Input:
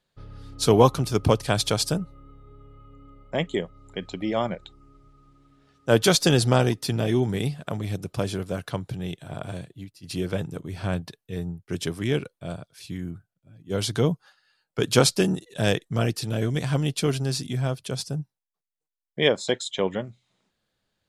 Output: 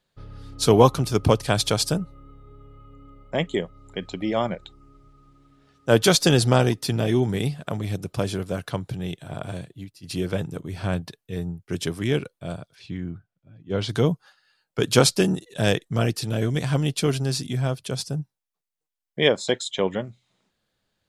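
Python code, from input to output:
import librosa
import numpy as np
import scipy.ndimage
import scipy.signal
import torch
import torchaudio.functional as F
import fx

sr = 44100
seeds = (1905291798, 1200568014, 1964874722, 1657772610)

y = fx.lowpass(x, sr, hz=3600.0, slope=12, at=(12.74, 13.88), fade=0.02)
y = y * 10.0 ** (1.5 / 20.0)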